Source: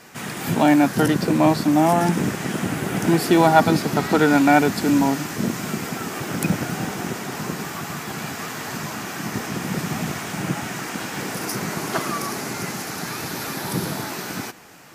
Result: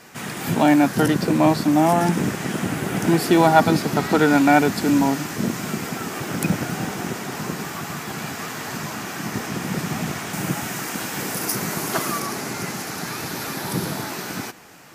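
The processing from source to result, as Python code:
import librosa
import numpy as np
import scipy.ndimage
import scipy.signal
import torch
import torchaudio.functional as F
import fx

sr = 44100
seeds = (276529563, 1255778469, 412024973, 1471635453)

y = fx.high_shelf(x, sr, hz=8900.0, db=10.0, at=(10.33, 12.2))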